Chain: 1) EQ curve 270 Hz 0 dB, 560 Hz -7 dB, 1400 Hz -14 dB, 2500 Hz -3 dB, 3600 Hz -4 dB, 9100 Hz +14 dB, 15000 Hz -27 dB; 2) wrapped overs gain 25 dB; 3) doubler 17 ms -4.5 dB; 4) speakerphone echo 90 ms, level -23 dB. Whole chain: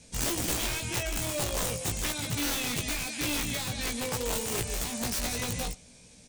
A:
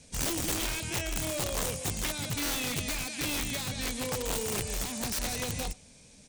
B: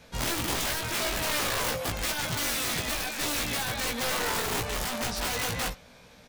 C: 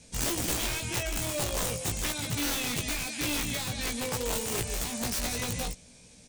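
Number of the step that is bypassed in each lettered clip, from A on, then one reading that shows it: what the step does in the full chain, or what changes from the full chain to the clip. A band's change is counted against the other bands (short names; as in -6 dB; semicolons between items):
3, crest factor change -2.5 dB; 1, 1 kHz band +5.5 dB; 4, echo-to-direct -27.5 dB to none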